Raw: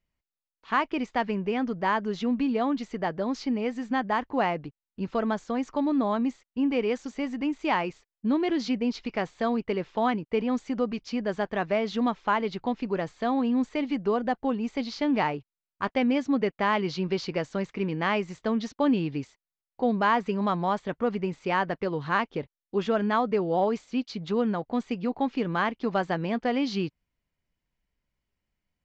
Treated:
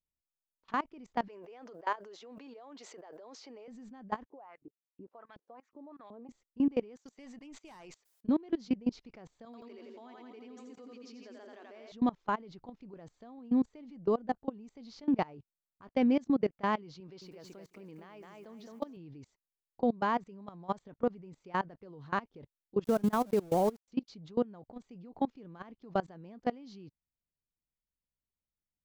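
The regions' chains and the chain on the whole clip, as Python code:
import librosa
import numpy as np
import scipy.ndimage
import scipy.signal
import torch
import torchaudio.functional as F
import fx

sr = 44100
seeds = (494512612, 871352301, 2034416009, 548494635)

y = fx.chain(x, sr, fx.highpass(hz=430.0, slope=24),
    fx.sustainer(db_per_s=20.0), at=(1.28, 3.68))
y = fx.chain(y, sr, fx.low_shelf(hz=290.0, db=-9.5),
    fx.filter_lfo_bandpass(shape='saw_up', hz=2.7, low_hz=260.0, high_hz=2900.0, q=2.8), at=(4.25, 6.29))
y = fx.chain(y, sr, fx.highpass(hz=1000.0, slope=6),
    fx.tube_stage(drive_db=29.0, bias=0.65),
    fx.sustainer(db_per_s=91.0), at=(6.96, 8.28))
y = fx.chain(y, sr, fx.brickwall_highpass(low_hz=230.0),
    fx.peak_eq(hz=550.0, db=-10.0, octaves=3.0),
    fx.echo_split(split_hz=510.0, low_ms=168, high_ms=85, feedback_pct=52, wet_db=-3.0), at=(9.45, 11.92))
y = fx.chain(y, sr, fx.low_shelf(hz=220.0, db=-12.0),
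    fx.echo_crushed(ms=215, feedback_pct=35, bits=9, wet_db=-6.0), at=(17.0, 18.97))
y = fx.chain(y, sr, fx.lowpass(hz=5500.0, slope=12),
    fx.peak_eq(hz=190.0, db=2.0, octaves=2.1),
    fx.sample_gate(floor_db=-31.5), at=(22.84, 23.88))
y = fx.level_steps(y, sr, step_db=24)
y = fx.peak_eq(y, sr, hz=2300.0, db=-9.0, octaves=2.6)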